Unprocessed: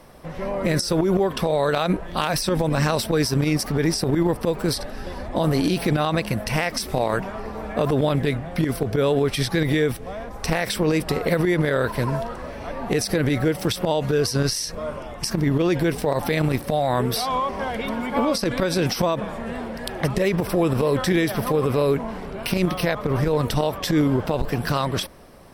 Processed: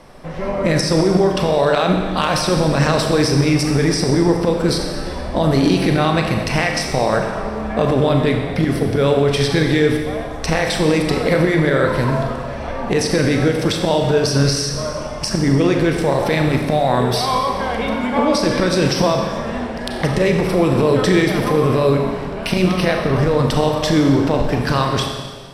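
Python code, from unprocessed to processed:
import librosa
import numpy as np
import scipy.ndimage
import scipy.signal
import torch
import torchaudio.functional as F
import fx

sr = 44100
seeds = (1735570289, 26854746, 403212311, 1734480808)

y = scipy.signal.sosfilt(scipy.signal.butter(2, 8300.0, 'lowpass', fs=sr, output='sos'), x)
y = fx.rev_schroeder(y, sr, rt60_s=1.5, comb_ms=29, drr_db=2.5)
y = F.gain(torch.from_numpy(y), 4.0).numpy()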